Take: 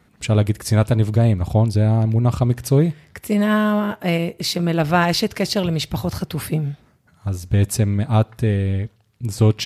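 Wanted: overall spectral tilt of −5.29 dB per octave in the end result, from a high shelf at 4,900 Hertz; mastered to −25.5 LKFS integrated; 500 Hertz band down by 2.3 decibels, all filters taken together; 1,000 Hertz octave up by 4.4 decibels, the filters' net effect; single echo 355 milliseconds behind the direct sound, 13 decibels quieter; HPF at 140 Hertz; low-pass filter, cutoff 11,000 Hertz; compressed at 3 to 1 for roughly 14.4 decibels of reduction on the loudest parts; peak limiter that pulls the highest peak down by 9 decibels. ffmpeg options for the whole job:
ffmpeg -i in.wav -af "highpass=140,lowpass=11000,equalizer=frequency=500:width_type=o:gain=-5.5,equalizer=frequency=1000:width_type=o:gain=8,highshelf=frequency=4900:gain=-7.5,acompressor=threshold=-30dB:ratio=3,alimiter=limit=-23.5dB:level=0:latency=1,aecho=1:1:355:0.224,volume=8.5dB" out.wav

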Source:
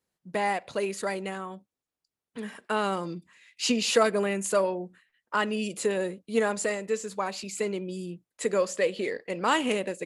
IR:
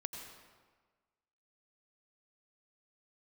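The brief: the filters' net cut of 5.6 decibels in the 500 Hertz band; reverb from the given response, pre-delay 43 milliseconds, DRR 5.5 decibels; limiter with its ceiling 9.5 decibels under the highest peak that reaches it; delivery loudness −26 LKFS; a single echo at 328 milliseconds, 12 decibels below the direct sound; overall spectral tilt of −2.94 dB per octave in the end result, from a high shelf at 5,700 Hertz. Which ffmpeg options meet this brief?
-filter_complex "[0:a]equalizer=frequency=500:width_type=o:gain=-7,highshelf=frequency=5700:gain=4,alimiter=limit=-21dB:level=0:latency=1,aecho=1:1:328:0.251,asplit=2[link_01][link_02];[1:a]atrim=start_sample=2205,adelay=43[link_03];[link_02][link_03]afir=irnorm=-1:irlink=0,volume=-4.5dB[link_04];[link_01][link_04]amix=inputs=2:normalize=0,volume=6dB"

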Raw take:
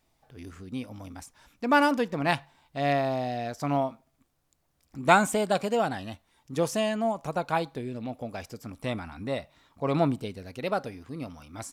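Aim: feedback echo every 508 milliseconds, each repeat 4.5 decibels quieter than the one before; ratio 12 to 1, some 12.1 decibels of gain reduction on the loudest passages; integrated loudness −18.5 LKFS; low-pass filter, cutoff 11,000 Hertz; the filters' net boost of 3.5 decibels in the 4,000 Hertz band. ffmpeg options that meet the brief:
ffmpeg -i in.wav -af "lowpass=11000,equalizer=frequency=4000:width_type=o:gain=4.5,acompressor=threshold=-26dB:ratio=12,aecho=1:1:508|1016|1524|2032|2540|3048|3556|4064|4572:0.596|0.357|0.214|0.129|0.0772|0.0463|0.0278|0.0167|0.01,volume=14dB" out.wav

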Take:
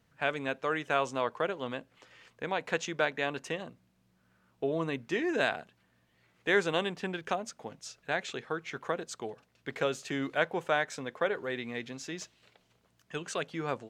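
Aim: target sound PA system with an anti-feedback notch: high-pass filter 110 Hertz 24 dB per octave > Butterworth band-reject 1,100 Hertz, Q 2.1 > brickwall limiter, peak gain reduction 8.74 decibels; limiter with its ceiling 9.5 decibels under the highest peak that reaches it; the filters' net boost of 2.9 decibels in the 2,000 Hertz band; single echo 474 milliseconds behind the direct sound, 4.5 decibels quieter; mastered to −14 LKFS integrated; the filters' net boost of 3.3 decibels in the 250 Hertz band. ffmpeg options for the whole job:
ffmpeg -i in.wav -af "equalizer=frequency=250:width_type=o:gain=4.5,equalizer=frequency=2000:width_type=o:gain=4,alimiter=limit=-19.5dB:level=0:latency=1,highpass=frequency=110:width=0.5412,highpass=frequency=110:width=1.3066,asuperstop=centerf=1100:order=8:qfactor=2.1,aecho=1:1:474:0.596,volume=22.5dB,alimiter=limit=-3dB:level=0:latency=1" out.wav

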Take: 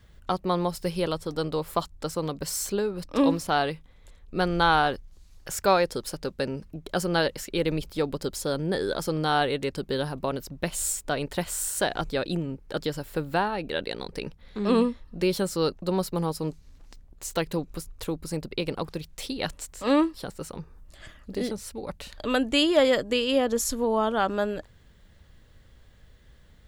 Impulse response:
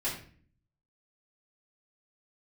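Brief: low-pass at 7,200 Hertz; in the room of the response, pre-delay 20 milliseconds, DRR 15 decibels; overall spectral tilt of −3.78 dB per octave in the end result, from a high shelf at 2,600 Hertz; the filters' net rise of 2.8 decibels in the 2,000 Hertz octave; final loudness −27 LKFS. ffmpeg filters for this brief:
-filter_complex "[0:a]lowpass=7200,equalizer=frequency=2000:width_type=o:gain=6,highshelf=frequency=2600:gain=-4.5,asplit=2[link_01][link_02];[1:a]atrim=start_sample=2205,adelay=20[link_03];[link_02][link_03]afir=irnorm=-1:irlink=0,volume=-20.5dB[link_04];[link_01][link_04]amix=inputs=2:normalize=0,volume=0.5dB"

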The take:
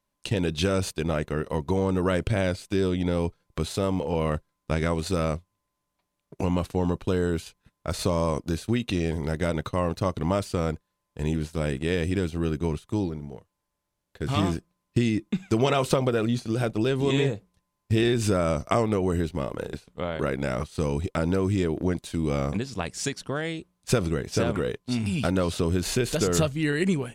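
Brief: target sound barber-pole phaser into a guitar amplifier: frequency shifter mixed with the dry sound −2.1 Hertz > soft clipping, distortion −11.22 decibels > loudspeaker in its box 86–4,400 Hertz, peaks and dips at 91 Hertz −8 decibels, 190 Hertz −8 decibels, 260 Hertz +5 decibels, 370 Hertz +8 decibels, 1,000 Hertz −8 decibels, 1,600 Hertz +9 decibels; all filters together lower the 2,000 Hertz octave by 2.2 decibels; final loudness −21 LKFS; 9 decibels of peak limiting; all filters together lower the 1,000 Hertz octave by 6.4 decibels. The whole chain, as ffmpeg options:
ffmpeg -i in.wav -filter_complex "[0:a]equalizer=frequency=1000:width_type=o:gain=-5,equalizer=frequency=2000:width_type=o:gain=-7.5,alimiter=limit=-17.5dB:level=0:latency=1,asplit=2[link_01][link_02];[link_02]afreqshift=-2.1[link_03];[link_01][link_03]amix=inputs=2:normalize=1,asoftclip=threshold=-30dB,highpass=86,equalizer=frequency=91:width_type=q:width=4:gain=-8,equalizer=frequency=190:width_type=q:width=4:gain=-8,equalizer=frequency=260:width_type=q:width=4:gain=5,equalizer=frequency=370:width_type=q:width=4:gain=8,equalizer=frequency=1000:width_type=q:width=4:gain=-8,equalizer=frequency=1600:width_type=q:width=4:gain=9,lowpass=frequency=4400:width=0.5412,lowpass=frequency=4400:width=1.3066,volume=14dB" out.wav

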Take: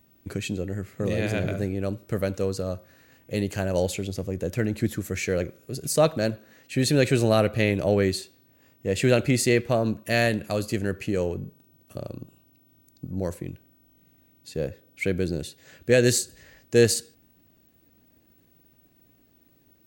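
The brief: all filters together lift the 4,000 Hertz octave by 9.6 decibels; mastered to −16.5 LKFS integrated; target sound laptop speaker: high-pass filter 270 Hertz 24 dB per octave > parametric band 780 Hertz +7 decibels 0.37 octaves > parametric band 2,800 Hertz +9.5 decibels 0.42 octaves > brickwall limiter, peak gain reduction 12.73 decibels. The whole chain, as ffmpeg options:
ffmpeg -i in.wav -af "highpass=frequency=270:width=0.5412,highpass=frequency=270:width=1.3066,equalizer=frequency=780:width_type=o:width=0.37:gain=7,equalizer=frequency=2800:width_type=o:width=0.42:gain=9.5,equalizer=frequency=4000:width_type=o:gain=8,volume=12dB,alimiter=limit=-3.5dB:level=0:latency=1" out.wav

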